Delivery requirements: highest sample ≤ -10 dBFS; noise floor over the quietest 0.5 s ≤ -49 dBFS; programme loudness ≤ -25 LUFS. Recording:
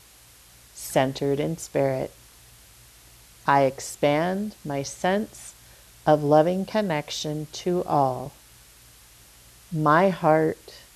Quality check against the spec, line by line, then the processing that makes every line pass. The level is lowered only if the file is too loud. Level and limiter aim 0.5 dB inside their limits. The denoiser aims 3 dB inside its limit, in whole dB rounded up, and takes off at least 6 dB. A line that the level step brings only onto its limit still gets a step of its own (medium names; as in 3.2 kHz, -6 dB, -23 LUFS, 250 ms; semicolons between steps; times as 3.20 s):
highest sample -5.5 dBFS: fail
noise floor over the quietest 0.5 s -52 dBFS: pass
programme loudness -24.0 LUFS: fail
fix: trim -1.5 dB; peak limiter -10.5 dBFS